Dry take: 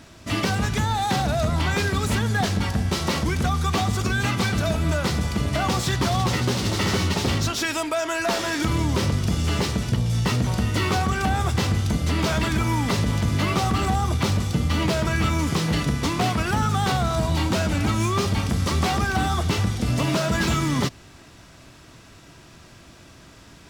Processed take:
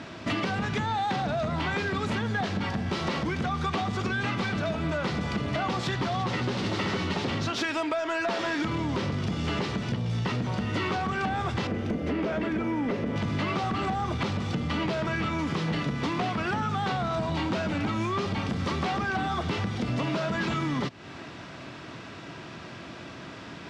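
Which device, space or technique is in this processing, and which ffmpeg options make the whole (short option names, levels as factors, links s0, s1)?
AM radio: -filter_complex "[0:a]asettb=1/sr,asplit=3[s0][s1][s2];[s0]atrim=end=11.674[s3];[s1]atrim=start=11.67:end=13.16,asetpts=PTS-STARTPTS,afade=t=in:d=0.004:c=qsin,afade=t=out:st=1.486:d=0.004:c=qsin,equalizer=f=125:t=o:w=1:g=-9,equalizer=f=250:t=o:w=1:g=3,equalizer=f=500:t=o:w=1:g=6,equalizer=f=1000:t=o:w=1:g=-7,equalizer=f=4000:t=o:w=1:g=-10,equalizer=f=8000:t=o:w=1:g=-9[s4];[s2]atrim=start=13.156[s5];[s3][s4]acrossfade=d=0.004:c1=hsin:c2=qsin[s6];[s6][s5]acrossfade=d=0.004:c1=qsin:c2=hsin,highpass=140,lowpass=3500,acompressor=threshold=0.0224:ratio=6,asoftclip=type=tanh:threshold=0.0398,volume=2.51"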